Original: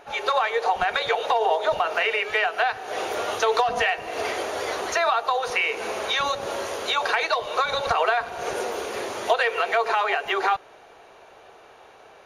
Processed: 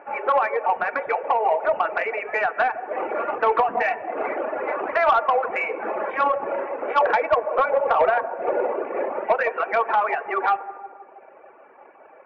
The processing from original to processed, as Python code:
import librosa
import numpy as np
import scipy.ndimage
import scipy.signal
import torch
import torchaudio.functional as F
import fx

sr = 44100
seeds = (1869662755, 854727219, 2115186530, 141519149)

y = scipy.ndimage.median_filter(x, 15, mode='constant')
y = scipy.signal.sosfilt(scipy.signal.ellip(4, 1.0, 40, 2500.0, 'lowpass', fs=sr, output='sos'), y)
y = fx.dynamic_eq(y, sr, hz=560.0, q=0.9, threshold_db=-38.0, ratio=4.0, max_db=8, at=(6.79, 9.22))
y = scipy.signal.sosfilt(scipy.signal.butter(2, 240.0, 'highpass', fs=sr, output='sos'), y)
y = fx.echo_bbd(y, sr, ms=160, stages=1024, feedback_pct=61, wet_db=-8.0)
y = fx.dereverb_blind(y, sr, rt60_s=1.2)
y = fx.rider(y, sr, range_db=5, speed_s=2.0)
y = y + 0.38 * np.pad(y, (int(3.5 * sr / 1000.0), 0))[:len(y)]
y = fx.rev_plate(y, sr, seeds[0], rt60_s=1.7, hf_ratio=0.75, predelay_ms=0, drr_db=16.5)
y = 10.0 ** (-13.0 / 20.0) * np.tanh(y / 10.0 ** (-13.0 / 20.0))
y = y * librosa.db_to_amplitude(3.5)